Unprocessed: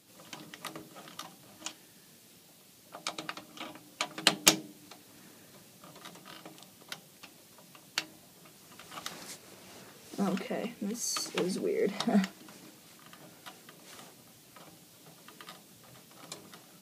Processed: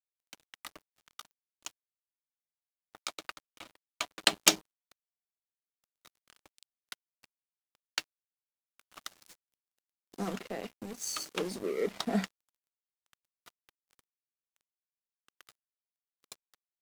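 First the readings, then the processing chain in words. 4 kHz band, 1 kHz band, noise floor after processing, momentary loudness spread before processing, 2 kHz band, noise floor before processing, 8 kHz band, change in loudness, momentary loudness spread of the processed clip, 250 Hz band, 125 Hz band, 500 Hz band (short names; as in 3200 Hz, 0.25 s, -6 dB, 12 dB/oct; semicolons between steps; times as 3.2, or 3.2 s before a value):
-1.0 dB, -2.0 dB, under -85 dBFS, 23 LU, -1.0 dB, -58 dBFS, -1.0 dB, +0.5 dB, 24 LU, -4.5 dB, -6.0 dB, -2.5 dB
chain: HPF 200 Hz 12 dB/oct; crossover distortion -41.5 dBFS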